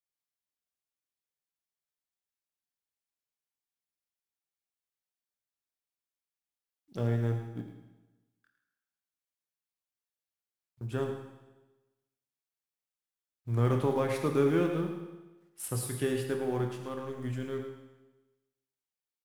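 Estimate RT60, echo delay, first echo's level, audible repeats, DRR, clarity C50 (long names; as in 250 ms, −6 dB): 1.1 s, 108 ms, −10.0 dB, 1, 3.0 dB, 5.0 dB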